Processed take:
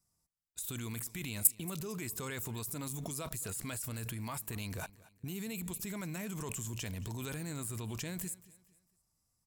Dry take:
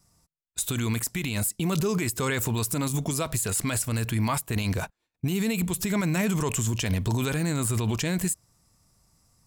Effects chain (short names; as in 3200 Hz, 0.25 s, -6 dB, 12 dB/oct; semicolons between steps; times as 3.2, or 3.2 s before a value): high shelf 8900 Hz +10 dB; level quantiser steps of 20 dB; feedback echo 0.227 s, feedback 37%, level -20.5 dB